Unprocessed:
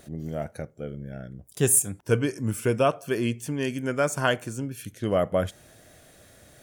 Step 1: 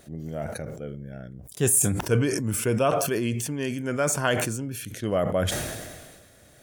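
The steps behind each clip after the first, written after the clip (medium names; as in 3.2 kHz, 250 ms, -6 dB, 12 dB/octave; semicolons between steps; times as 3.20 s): decay stretcher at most 36 dB/s; trim -1.5 dB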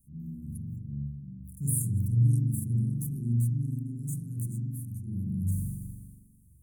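inverse Chebyshev band-stop 580–3700 Hz, stop band 60 dB; spring tank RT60 1.2 s, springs 42 ms, chirp 55 ms, DRR -7.5 dB; trim -7.5 dB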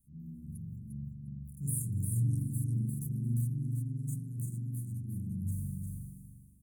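feedback delay 351 ms, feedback 16%, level -5 dB; trim -6 dB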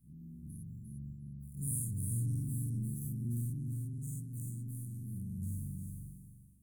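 every event in the spectrogram widened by 120 ms; AM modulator 120 Hz, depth 15%; trim -6 dB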